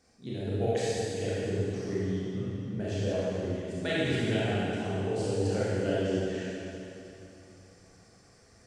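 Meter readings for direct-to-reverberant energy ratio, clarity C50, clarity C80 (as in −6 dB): −9.5 dB, −5.5 dB, −3.5 dB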